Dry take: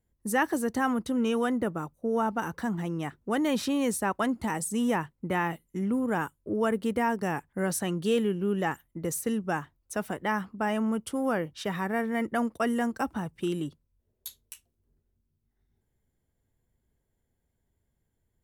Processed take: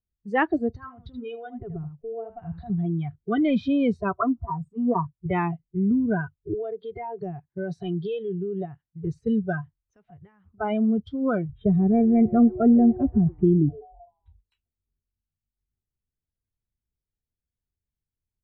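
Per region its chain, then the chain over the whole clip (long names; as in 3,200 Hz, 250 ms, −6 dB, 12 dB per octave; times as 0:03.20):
0:00.71–0:02.70: downward compressor 4 to 1, threshold −31 dBFS + single-tap delay 79 ms −7.5 dB
0:04.18–0:05.26: high shelf with overshoot 1,600 Hz −8.5 dB, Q 3 + notch comb filter 210 Hz + multiband upward and downward expander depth 40%
0:06.54–0:09.07: high-pass filter 160 Hz 6 dB per octave + high-shelf EQ 12,000 Hz +9.5 dB + downward compressor 10 to 1, threshold −27 dBFS
0:09.61–0:10.46: high-shelf EQ 3,000 Hz +7.5 dB + downward compressor 3 to 1, threshold −42 dBFS
0:11.49–0:14.41: Butterworth low-pass 3,200 Hz + tilt shelving filter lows +8 dB, about 700 Hz + echo with shifted repeats 128 ms, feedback 58%, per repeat +130 Hz, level −17 dB
whole clip: noise reduction from a noise print of the clip's start 24 dB; low-pass filter 2,900 Hz 24 dB per octave; low-shelf EQ 170 Hz +11 dB; level +3 dB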